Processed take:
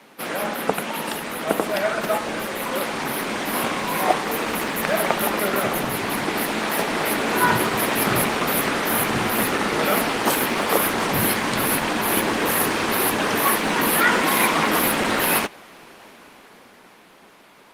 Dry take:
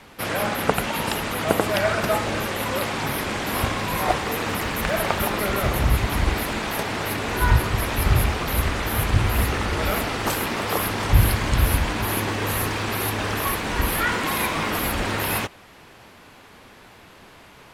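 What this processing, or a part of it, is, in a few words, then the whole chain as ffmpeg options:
video call: -af "highpass=f=180:w=0.5412,highpass=f=180:w=1.3066,dynaudnorm=f=160:g=21:m=7.5dB" -ar 48000 -c:a libopus -b:a 24k

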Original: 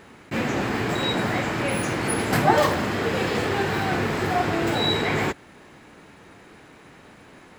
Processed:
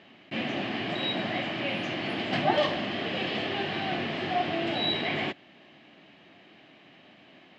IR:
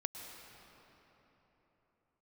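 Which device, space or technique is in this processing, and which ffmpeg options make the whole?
kitchen radio: -af "highpass=180,equalizer=f=460:t=q:w=4:g=-10,equalizer=f=660:t=q:w=4:g=5,equalizer=f=940:t=q:w=4:g=-8,equalizer=f=1.4k:t=q:w=4:g=-9,equalizer=f=3k:t=q:w=4:g=9,lowpass=f=4.5k:w=0.5412,lowpass=f=4.5k:w=1.3066,volume=-4.5dB"

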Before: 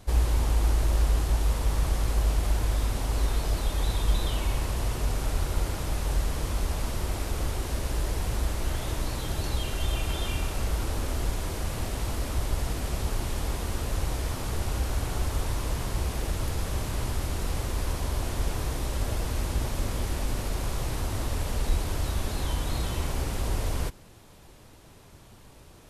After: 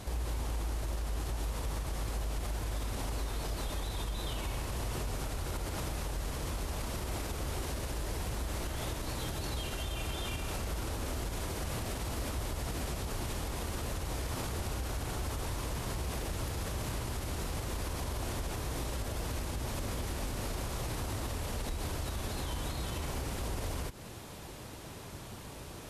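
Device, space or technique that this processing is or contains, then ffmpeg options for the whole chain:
podcast mastering chain: -af "highpass=f=60:p=1,acompressor=threshold=-37dB:ratio=3,alimiter=level_in=10.5dB:limit=-24dB:level=0:latency=1:release=94,volume=-10.5dB,volume=7.5dB" -ar 32000 -c:a libmp3lame -b:a 112k

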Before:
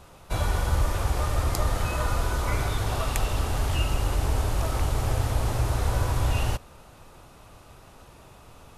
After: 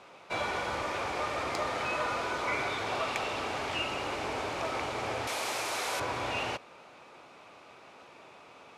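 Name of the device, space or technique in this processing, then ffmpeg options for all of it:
intercom: -filter_complex "[0:a]highpass=310,lowpass=4.8k,equalizer=f=2.3k:t=o:w=0.26:g=8,asoftclip=type=tanh:threshold=-19.5dB,asettb=1/sr,asplit=3[a][b][c];[a]atrim=end=5.274[d];[b]atrim=start=5.27:end=6,asetpts=PTS-STARTPTS,afade=t=in:d=0.004:c=qsin,afade=t=out:st=0.726:d=0.004:c=qsin,aemphasis=mode=production:type=riaa[e];[c]atrim=start=5.996[f];[d][e]acrossfade=d=0.004:c1=hsin:c2=qsin[g];[g][f]acrossfade=d=0.004:c1=qsin:c2=hsin"

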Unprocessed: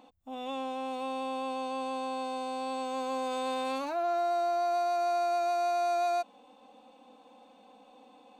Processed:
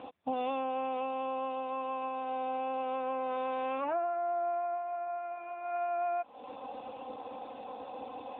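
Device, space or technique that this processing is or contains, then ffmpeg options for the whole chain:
voicemail: -filter_complex "[0:a]asplit=3[a][b][c];[a]afade=t=out:st=3.86:d=0.02[d];[b]equalizer=f=3.2k:t=o:w=1.4:g=-4,afade=t=in:st=3.86:d=0.02,afade=t=out:st=5.17:d=0.02[e];[c]afade=t=in:st=5.17:d=0.02[f];[d][e][f]amix=inputs=3:normalize=0,highpass=310,lowpass=3k,acompressor=threshold=-44dB:ratio=10,volume=15dB" -ar 8000 -c:a libopencore_amrnb -b:a 7950

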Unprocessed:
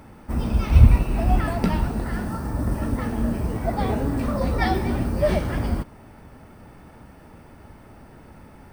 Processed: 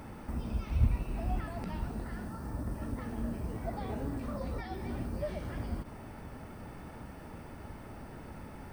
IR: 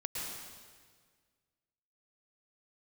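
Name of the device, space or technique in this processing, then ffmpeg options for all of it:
de-esser from a sidechain: -filter_complex "[0:a]asplit=2[a][b];[b]highpass=4.9k,apad=whole_len=384725[c];[a][c]sidechaincompress=threshold=-60dB:ratio=8:attack=4:release=51"

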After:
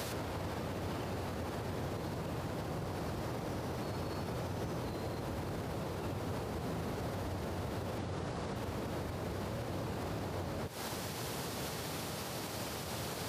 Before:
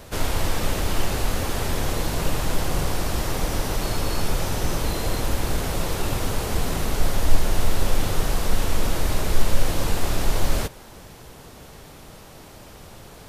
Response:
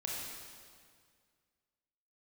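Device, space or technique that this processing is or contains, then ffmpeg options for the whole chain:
broadcast voice chain: -filter_complex "[0:a]highpass=f=83:w=0.5412,highpass=f=83:w=1.3066,deesser=0.95,acompressor=threshold=-38dB:ratio=6,equalizer=f=4.6k:t=o:w=0.47:g=3,alimiter=level_in=16dB:limit=-24dB:level=0:latency=1:release=181,volume=-16dB,asettb=1/sr,asplit=3[a][b][c];[a]atrim=end=7.984[d];[b]atrim=start=7.98:end=8.56,asetpts=PTS-STARTPTS,afade=t=in:d=0.004:c=qsin,afade=t=out:st=0.576:d=0.004:c=qsin,lowpass=f=9.6k:w=0.5412,lowpass=f=9.6k:w=1.3066[e];[c]atrim=start=8.556[f];[d][e]acrossfade=d=0.004:c1=hsin:c2=qsin[g];[g][f]acrossfade=d=0.004:c1=qsin:c2=hsin,volume=9.5dB"

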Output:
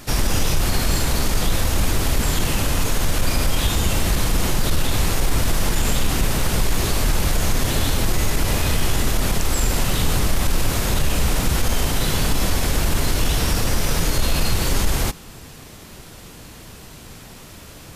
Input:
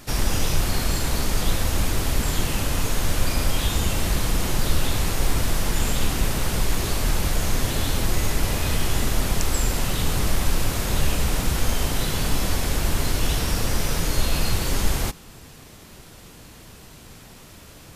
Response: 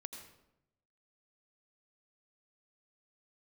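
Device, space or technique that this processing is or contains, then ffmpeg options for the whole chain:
soft clipper into limiter: -af "asoftclip=type=tanh:threshold=-8dB,alimiter=limit=-14dB:level=0:latency=1:release=42,volume=4.5dB"

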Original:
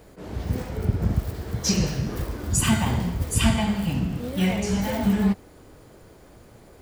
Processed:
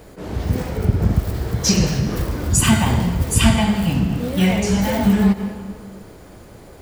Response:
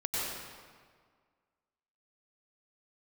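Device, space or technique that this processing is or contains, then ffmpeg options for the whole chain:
ducked reverb: -filter_complex "[0:a]asplit=3[a][b][c];[1:a]atrim=start_sample=2205[d];[b][d]afir=irnorm=-1:irlink=0[e];[c]apad=whole_len=300409[f];[e][f]sidechaincompress=threshold=-29dB:ratio=8:attack=16:release=112,volume=-13.5dB[g];[a][g]amix=inputs=2:normalize=0,volume=5.5dB"

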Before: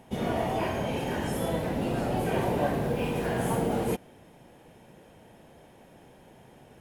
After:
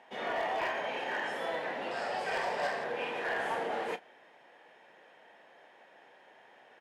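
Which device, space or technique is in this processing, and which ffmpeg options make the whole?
megaphone: -filter_complex "[0:a]highpass=670,lowpass=3.8k,equalizer=f=1.8k:t=o:w=0.29:g=7.5,asoftclip=type=hard:threshold=-27dB,asplit=2[a][b];[b]adelay=33,volume=-14dB[c];[a][c]amix=inputs=2:normalize=0,asettb=1/sr,asplit=3[d][e][f];[d]atrim=end=1.914[g];[e]atrim=start=1.91:end=2.84,asetpts=PTS-STARTPTS,afade=t=in:d=0.004:c=qsin,afade=t=out:st=0.926:d=0.004:c=qsin,equalizer=f=315:t=o:w=0.33:g=-11,equalizer=f=5k:t=o:w=0.33:g=12,equalizer=f=8k:t=o:w=0.33:g=10[h];[f]atrim=start=2.836[i];[g][h]acrossfade=d=0.004:c1=hsin:c2=qsin[j];[j][i]acrossfade=d=0.004:c1=qsin:c2=hsin"

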